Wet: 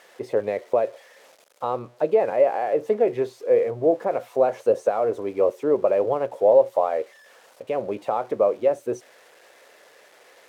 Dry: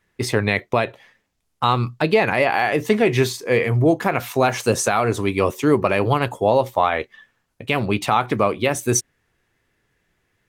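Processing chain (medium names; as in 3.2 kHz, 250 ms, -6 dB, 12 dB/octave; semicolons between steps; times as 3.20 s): zero-crossing glitches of -17 dBFS; band-pass filter 540 Hz, Q 3.8; trim +4 dB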